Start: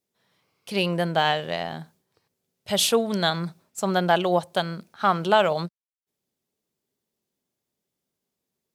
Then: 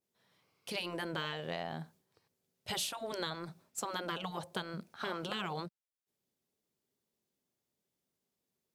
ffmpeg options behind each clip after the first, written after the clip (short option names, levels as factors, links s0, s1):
-af "afftfilt=real='re*lt(hypot(re,im),0.316)':imag='im*lt(hypot(re,im),0.316)':win_size=1024:overlap=0.75,acompressor=threshold=0.0316:ratio=5,adynamicequalizer=threshold=0.00355:dfrequency=1900:dqfactor=0.7:tfrequency=1900:tqfactor=0.7:attack=5:release=100:ratio=0.375:range=1.5:mode=cutabove:tftype=highshelf,volume=0.631"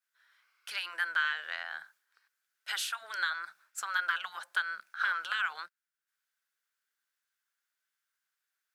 -af "highpass=f=1500:t=q:w=6.3"